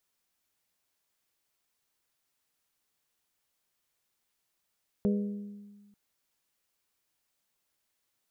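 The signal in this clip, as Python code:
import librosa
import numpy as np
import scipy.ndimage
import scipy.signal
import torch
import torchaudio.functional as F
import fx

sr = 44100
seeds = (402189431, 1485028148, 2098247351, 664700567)

y = fx.strike_glass(sr, length_s=0.89, level_db=-23, body='bell', hz=204.0, decay_s=1.5, tilt_db=6, modes=4)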